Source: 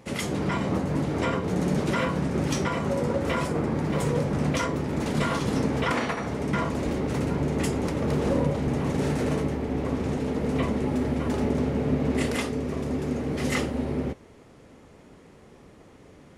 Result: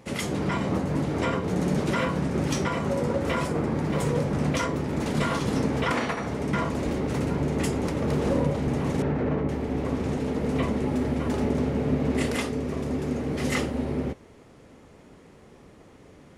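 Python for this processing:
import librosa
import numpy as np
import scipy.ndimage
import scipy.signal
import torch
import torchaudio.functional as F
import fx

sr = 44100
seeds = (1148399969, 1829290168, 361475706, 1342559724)

y = fx.lowpass(x, sr, hz=1900.0, slope=12, at=(9.02, 9.49))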